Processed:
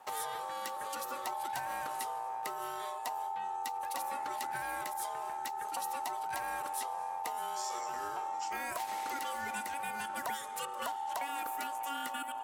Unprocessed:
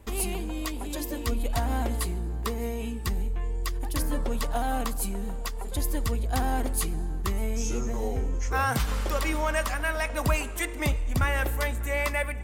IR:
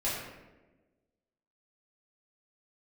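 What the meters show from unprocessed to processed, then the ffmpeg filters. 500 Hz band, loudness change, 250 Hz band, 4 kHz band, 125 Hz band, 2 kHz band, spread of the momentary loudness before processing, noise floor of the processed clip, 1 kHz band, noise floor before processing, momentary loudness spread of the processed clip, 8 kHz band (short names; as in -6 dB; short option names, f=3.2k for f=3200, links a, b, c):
-13.0 dB, -8.5 dB, -20.0 dB, -7.0 dB, under -30 dB, -9.5 dB, 6 LU, -41 dBFS, 0.0 dB, -34 dBFS, 2 LU, -8.0 dB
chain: -filter_complex "[0:a]acrossover=split=870|6900[a][b][c];[a]acompressor=threshold=-33dB:ratio=4[d];[b]acompressor=threshold=-42dB:ratio=4[e];[c]acompressor=threshold=-41dB:ratio=4[f];[d][e][f]amix=inputs=3:normalize=0,aeval=exprs='val(0)*sin(2*PI*840*n/s)':c=same,highpass=f=480:p=1"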